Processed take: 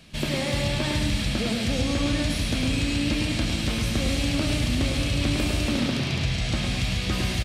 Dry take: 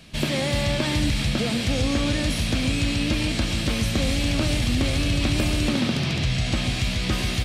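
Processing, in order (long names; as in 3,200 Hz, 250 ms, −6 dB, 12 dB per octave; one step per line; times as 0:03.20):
repeating echo 105 ms, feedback 45%, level −5.5 dB
level −3 dB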